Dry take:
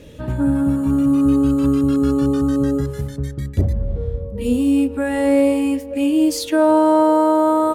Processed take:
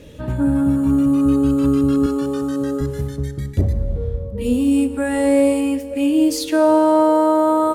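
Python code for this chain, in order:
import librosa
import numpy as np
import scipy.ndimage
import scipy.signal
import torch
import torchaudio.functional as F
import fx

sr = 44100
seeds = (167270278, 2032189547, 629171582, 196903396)

y = fx.highpass(x, sr, hz=340.0, slope=6, at=(2.06, 2.81))
y = fx.peak_eq(y, sr, hz=8500.0, db=7.0, octaves=0.58, at=(4.71, 5.61))
y = fx.rev_schroeder(y, sr, rt60_s=2.0, comb_ms=28, drr_db=13.5)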